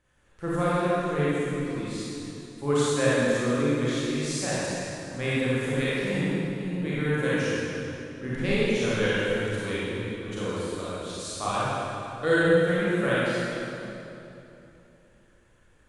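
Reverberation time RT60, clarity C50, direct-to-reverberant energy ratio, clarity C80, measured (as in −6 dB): 3.0 s, −7.0 dB, −10.0 dB, −3.5 dB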